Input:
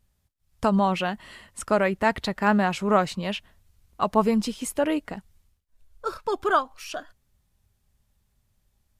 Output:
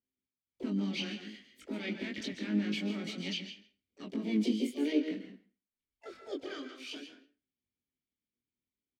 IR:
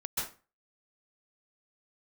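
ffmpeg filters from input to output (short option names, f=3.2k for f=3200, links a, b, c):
-filter_complex "[0:a]asplit=2[a][b];[b]adelay=160,highpass=300,lowpass=3.4k,asoftclip=type=hard:threshold=-15.5dB,volume=-17dB[c];[a][c]amix=inputs=2:normalize=0,alimiter=limit=-18dB:level=0:latency=1:release=55,asplit=3[d][e][f];[d]bandpass=f=270:t=q:w=8,volume=0dB[g];[e]bandpass=f=2.29k:t=q:w=8,volume=-6dB[h];[f]bandpass=f=3.01k:t=q:w=8,volume=-9dB[i];[g][h][i]amix=inputs=3:normalize=0,agate=range=-12dB:threshold=-58dB:ratio=16:detection=peak,flanger=delay=19:depth=6:speed=0.54,asplit=2[j][k];[1:a]atrim=start_sample=2205[l];[k][l]afir=irnorm=-1:irlink=0,volume=-9dB[m];[j][m]amix=inputs=2:normalize=0,asplit=4[n][o][p][q];[o]asetrate=55563,aresample=44100,atempo=0.793701,volume=-15dB[r];[p]asetrate=66075,aresample=44100,atempo=0.66742,volume=-8dB[s];[q]asetrate=88200,aresample=44100,atempo=0.5,volume=-17dB[t];[n][r][s][t]amix=inputs=4:normalize=0,adynamicequalizer=threshold=0.00126:dfrequency=2900:dqfactor=0.7:tfrequency=2900:tqfactor=0.7:attack=5:release=100:ratio=0.375:range=2:mode=boostabove:tftype=highshelf,volume=5.5dB"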